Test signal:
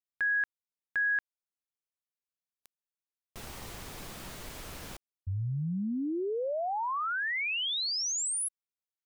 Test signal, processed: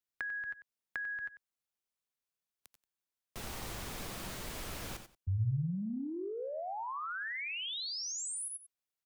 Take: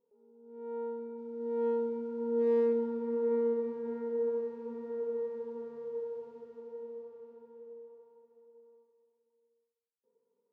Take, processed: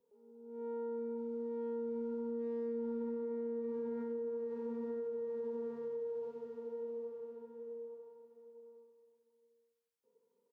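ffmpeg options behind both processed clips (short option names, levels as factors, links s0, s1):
-filter_complex "[0:a]asplit=2[s0][s1];[s1]aecho=0:1:86:0.299[s2];[s0][s2]amix=inputs=2:normalize=0,acrossover=split=130[s3][s4];[s4]acompressor=threshold=0.0112:ratio=10:attack=9.4:release=98:knee=2.83:detection=peak[s5];[s3][s5]amix=inputs=2:normalize=0,asplit=2[s6][s7];[s7]aecho=0:1:95:0.211[s8];[s6][s8]amix=inputs=2:normalize=0,volume=1.12"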